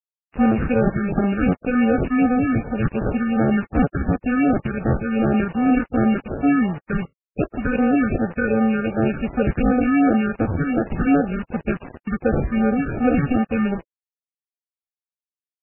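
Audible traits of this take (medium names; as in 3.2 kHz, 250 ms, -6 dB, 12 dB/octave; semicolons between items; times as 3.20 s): aliases and images of a low sample rate 1 kHz, jitter 0%; phasing stages 6, 2.7 Hz, lowest notch 670–3900 Hz; a quantiser's noise floor 6-bit, dither none; MP3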